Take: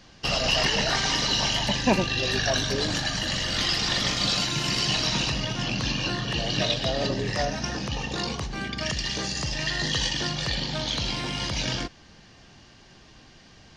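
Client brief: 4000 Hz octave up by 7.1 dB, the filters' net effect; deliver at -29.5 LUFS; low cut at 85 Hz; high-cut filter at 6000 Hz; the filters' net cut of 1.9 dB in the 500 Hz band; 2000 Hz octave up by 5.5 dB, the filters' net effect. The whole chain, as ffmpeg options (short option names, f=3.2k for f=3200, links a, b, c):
-af "highpass=85,lowpass=6k,equalizer=f=500:t=o:g=-3,equalizer=f=2k:t=o:g=4.5,equalizer=f=4k:t=o:g=8.5,volume=-10dB"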